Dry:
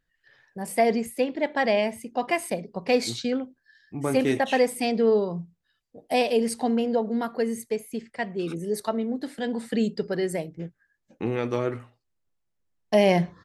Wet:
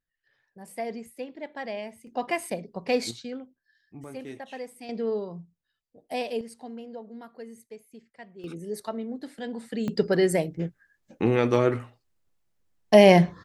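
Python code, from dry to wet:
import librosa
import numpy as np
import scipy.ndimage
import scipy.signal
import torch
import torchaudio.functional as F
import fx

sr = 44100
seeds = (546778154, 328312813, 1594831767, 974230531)

y = fx.gain(x, sr, db=fx.steps((0.0, -12.0), (2.07, -3.0), (3.11, -10.0), (4.04, -16.5), (4.89, -8.0), (6.41, -16.0), (8.44, -6.0), (9.88, 5.0)))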